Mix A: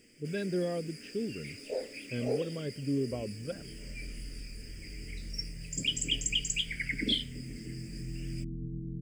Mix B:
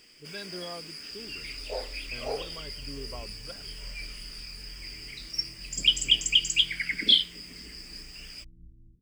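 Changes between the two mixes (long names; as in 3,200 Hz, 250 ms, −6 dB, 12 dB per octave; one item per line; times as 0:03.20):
first sound +7.5 dB
second sound: entry −2.30 s
master: add graphic EQ with 10 bands 125 Hz −10 dB, 250 Hz −11 dB, 500 Hz −9 dB, 1,000 Hz +12 dB, 2,000 Hz −7 dB, 4,000 Hz +8 dB, 8,000 Hz −7 dB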